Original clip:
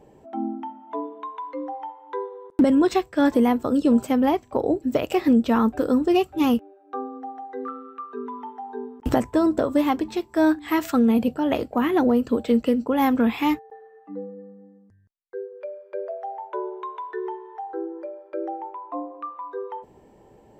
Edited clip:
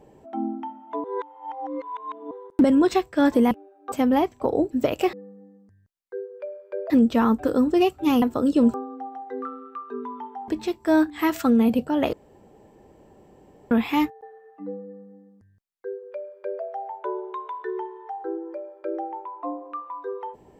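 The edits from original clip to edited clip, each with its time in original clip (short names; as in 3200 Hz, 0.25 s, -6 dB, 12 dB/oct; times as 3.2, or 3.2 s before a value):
1.04–2.31 reverse
3.51–4.03 swap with 6.56–6.97
8.71–9.97 cut
11.62–13.2 room tone
14.34–16.11 copy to 5.24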